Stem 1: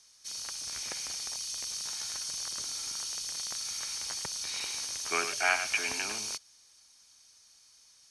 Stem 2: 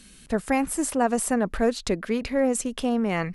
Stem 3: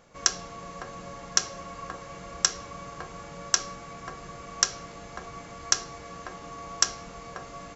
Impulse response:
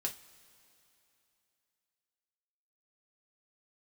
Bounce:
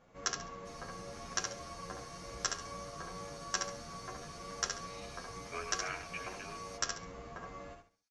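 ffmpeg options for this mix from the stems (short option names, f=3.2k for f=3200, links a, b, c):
-filter_complex "[0:a]agate=range=-33dB:threshold=-52dB:ratio=3:detection=peak,adelay=400,volume=-11dB,asplit=2[a][b];[b]volume=-5dB[c];[2:a]volume=-2.5dB,asplit=2[d][e];[e]volume=-5dB[f];[3:a]atrim=start_sample=2205[g];[c][g]afir=irnorm=-1:irlink=0[h];[f]aecho=0:1:69|138|207|276:1|0.28|0.0784|0.022[i];[a][d][h][i]amix=inputs=4:normalize=0,highshelf=f=3.4k:g=-10.5,asplit=2[j][k];[k]adelay=9.4,afreqshift=2.3[l];[j][l]amix=inputs=2:normalize=1"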